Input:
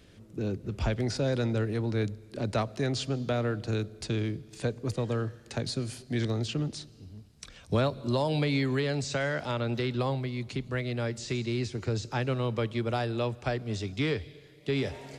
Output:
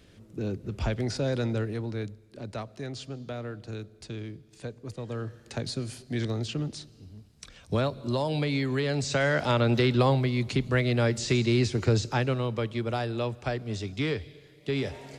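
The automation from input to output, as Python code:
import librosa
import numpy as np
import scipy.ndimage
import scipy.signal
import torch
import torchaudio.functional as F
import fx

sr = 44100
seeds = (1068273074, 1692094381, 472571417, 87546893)

y = fx.gain(x, sr, db=fx.line((1.53, 0.0), (2.29, -7.5), (4.96, -7.5), (5.39, -0.5), (8.67, -0.5), (9.47, 7.0), (11.93, 7.0), (12.48, 0.0)))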